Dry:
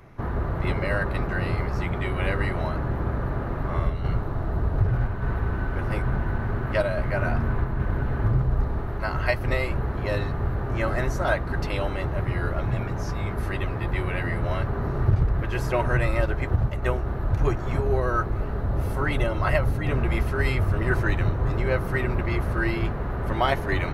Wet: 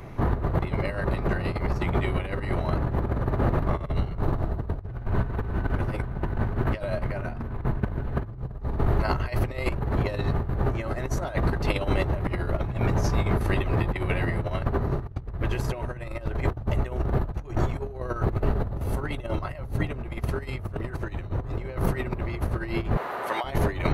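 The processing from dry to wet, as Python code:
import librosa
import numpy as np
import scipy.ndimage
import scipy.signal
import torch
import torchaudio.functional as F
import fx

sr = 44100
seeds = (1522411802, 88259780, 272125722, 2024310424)

y = fx.highpass(x, sr, hz=730.0, slope=12, at=(22.97, 23.44))
y = fx.peak_eq(y, sr, hz=1500.0, db=-5.0, octaves=0.8)
y = fx.notch(y, sr, hz=5300.0, q=18.0)
y = fx.over_compress(y, sr, threshold_db=-29.0, ratio=-0.5)
y = F.gain(torch.from_numpy(y), 3.5).numpy()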